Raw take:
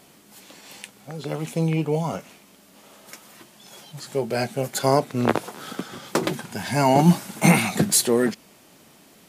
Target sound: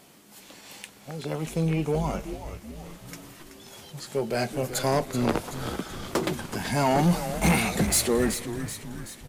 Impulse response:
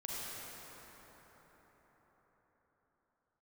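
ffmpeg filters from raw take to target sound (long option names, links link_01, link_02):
-filter_complex "[0:a]asoftclip=type=tanh:threshold=-14.5dB,asplit=7[link_01][link_02][link_03][link_04][link_05][link_06][link_07];[link_02]adelay=379,afreqshift=-110,volume=-10dB[link_08];[link_03]adelay=758,afreqshift=-220,volume=-15dB[link_09];[link_04]adelay=1137,afreqshift=-330,volume=-20.1dB[link_10];[link_05]adelay=1516,afreqshift=-440,volume=-25.1dB[link_11];[link_06]adelay=1895,afreqshift=-550,volume=-30.1dB[link_12];[link_07]adelay=2274,afreqshift=-660,volume=-35.2dB[link_13];[link_01][link_08][link_09][link_10][link_11][link_12][link_13]amix=inputs=7:normalize=0,asplit=2[link_14][link_15];[1:a]atrim=start_sample=2205,afade=type=out:start_time=0.44:duration=0.01,atrim=end_sample=19845[link_16];[link_15][link_16]afir=irnorm=-1:irlink=0,volume=-20.5dB[link_17];[link_14][link_17]amix=inputs=2:normalize=0,volume=-2dB"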